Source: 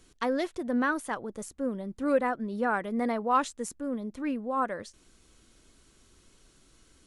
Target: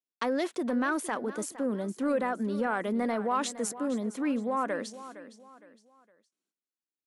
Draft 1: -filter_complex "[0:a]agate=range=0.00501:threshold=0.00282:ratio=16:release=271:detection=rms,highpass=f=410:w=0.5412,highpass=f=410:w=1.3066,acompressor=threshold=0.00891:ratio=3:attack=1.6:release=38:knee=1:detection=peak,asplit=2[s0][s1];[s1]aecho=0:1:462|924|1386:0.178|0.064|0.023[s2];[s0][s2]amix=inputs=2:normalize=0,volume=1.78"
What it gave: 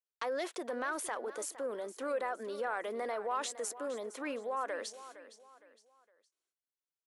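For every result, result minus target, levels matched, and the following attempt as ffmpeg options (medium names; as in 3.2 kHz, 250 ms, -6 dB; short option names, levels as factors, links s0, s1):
250 Hz band -9.5 dB; compression: peak gain reduction +6.5 dB
-filter_complex "[0:a]agate=range=0.00501:threshold=0.00282:ratio=16:release=271:detection=rms,highpass=f=190:w=0.5412,highpass=f=190:w=1.3066,acompressor=threshold=0.00891:ratio=3:attack=1.6:release=38:knee=1:detection=peak,asplit=2[s0][s1];[s1]aecho=0:1:462|924|1386:0.178|0.064|0.023[s2];[s0][s2]amix=inputs=2:normalize=0,volume=1.78"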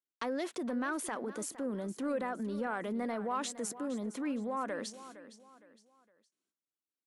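compression: peak gain reduction +6.5 dB
-filter_complex "[0:a]agate=range=0.00501:threshold=0.00282:ratio=16:release=271:detection=rms,highpass=f=190:w=0.5412,highpass=f=190:w=1.3066,acompressor=threshold=0.0266:ratio=3:attack=1.6:release=38:knee=1:detection=peak,asplit=2[s0][s1];[s1]aecho=0:1:462|924|1386:0.178|0.064|0.023[s2];[s0][s2]amix=inputs=2:normalize=0,volume=1.78"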